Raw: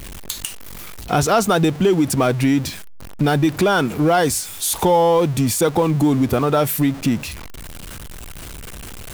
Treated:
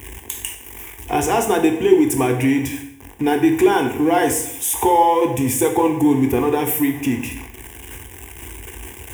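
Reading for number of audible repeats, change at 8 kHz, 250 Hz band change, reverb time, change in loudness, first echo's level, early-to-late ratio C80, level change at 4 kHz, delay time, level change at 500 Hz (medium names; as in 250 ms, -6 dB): no echo, 0.0 dB, +1.0 dB, 0.70 s, 0.0 dB, no echo, 11.0 dB, -4.5 dB, no echo, 0.0 dB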